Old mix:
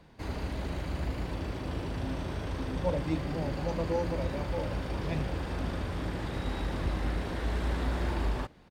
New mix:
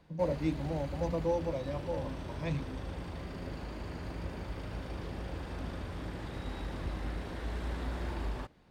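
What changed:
speech: entry -2.65 s; background -6.0 dB

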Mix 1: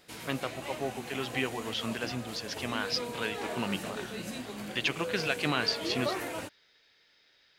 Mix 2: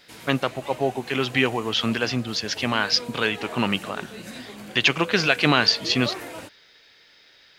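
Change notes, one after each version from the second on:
first voice +11.0 dB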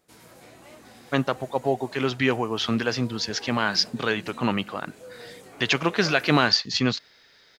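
first voice: entry +0.85 s; background -6.5 dB; master: add peaking EQ 2.8 kHz -6 dB 0.86 oct

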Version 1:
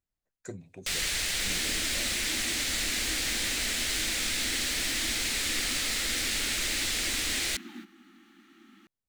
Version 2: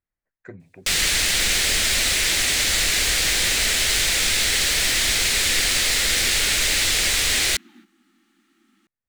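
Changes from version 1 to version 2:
speech: add resonant low-pass 1.9 kHz, resonance Q 2.4; first sound +10.0 dB; second sound -6.5 dB

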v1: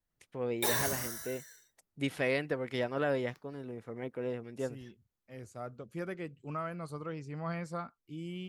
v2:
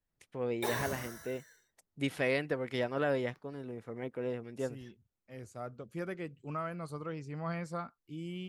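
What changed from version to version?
background: add treble shelf 3.1 kHz -11.5 dB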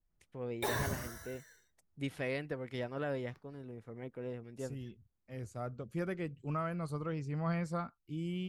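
first voice -7.0 dB; master: add bass shelf 120 Hz +12 dB

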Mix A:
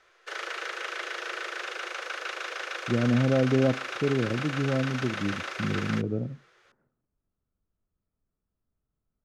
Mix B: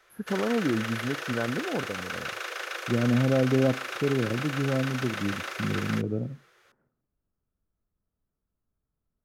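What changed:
first voice: unmuted; master: remove low-pass 7.1 kHz 12 dB/octave

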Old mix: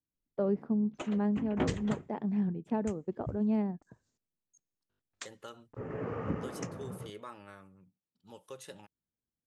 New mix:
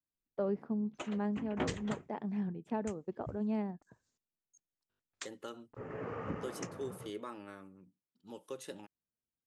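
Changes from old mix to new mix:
second voice: add peaking EQ 290 Hz +13 dB 1.3 oct; background: send -7.0 dB; master: add bass shelf 480 Hz -6.5 dB

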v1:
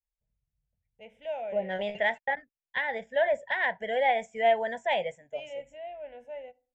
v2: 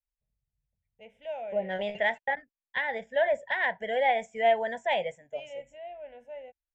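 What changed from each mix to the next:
reverb: off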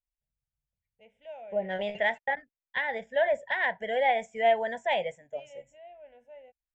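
first voice -7.0 dB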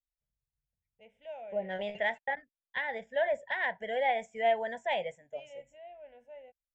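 second voice -4.0 dB

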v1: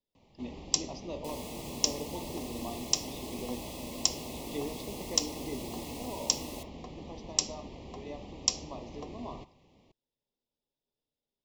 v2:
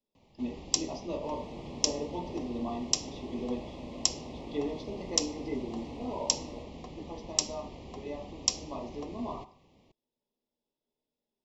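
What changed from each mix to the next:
speech: send +10.0 dB; second sound: add tape spacing loss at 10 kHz 34 dB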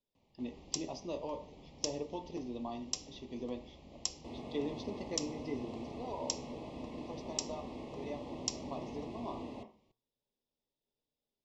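speech: send -9.0 dB; first sound -9.5 dB; second sound: entry +3.00 s

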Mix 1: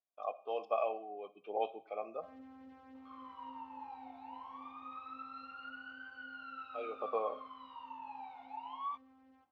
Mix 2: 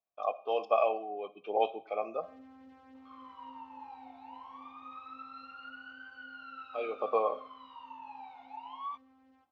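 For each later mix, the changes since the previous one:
speech +6.5 dB; master: add treble shelf 3.8 kHz +5.5 dB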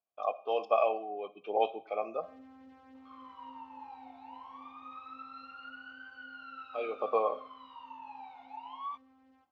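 no change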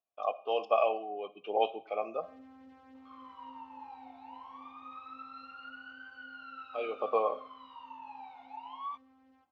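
speech: remove band-stop 2.9 kHz, Q 6.5

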